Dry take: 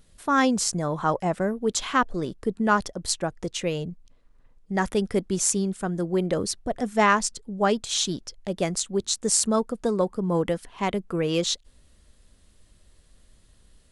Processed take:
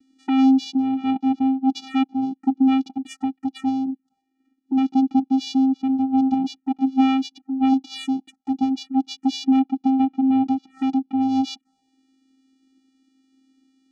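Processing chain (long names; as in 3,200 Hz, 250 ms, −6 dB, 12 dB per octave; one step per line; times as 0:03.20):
channel vocoder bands 4, square 265 Hz
phaser swept by the level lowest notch 150 Hz, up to 1,700 Hz, full sweep at −28 dBFS
level +6 dB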